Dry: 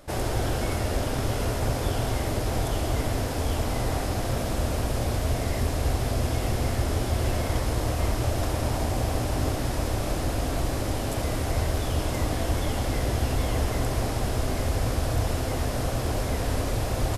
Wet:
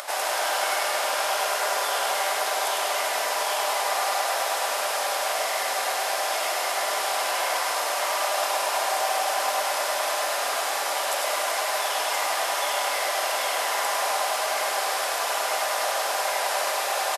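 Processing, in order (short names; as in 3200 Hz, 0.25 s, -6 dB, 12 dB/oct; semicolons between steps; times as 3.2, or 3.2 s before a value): echo 0.1 s -4.5 dB; upward compressor, threshold -29 dBFS; HPF 700 Hz 24 dB/oct; darkening echo 0.105 s, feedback 78%, low-pass 4800 Hz, level -7.5 dB; on a send at -10.5 dB: reverb RT60 0.60 s, pre-delay 3 ms; on the sum: gain +7 dB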